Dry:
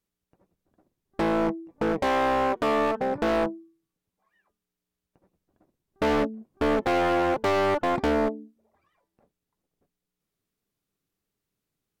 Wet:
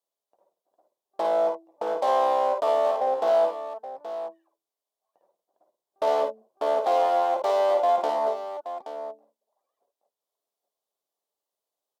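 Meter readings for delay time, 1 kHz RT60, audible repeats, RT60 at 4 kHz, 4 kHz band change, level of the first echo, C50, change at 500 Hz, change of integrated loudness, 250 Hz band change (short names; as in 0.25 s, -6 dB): 53 ms, none, 2, none, -3.5 dB, -4.5 dB, none, +3.0 dB, +0.5 dB, -16.0 dB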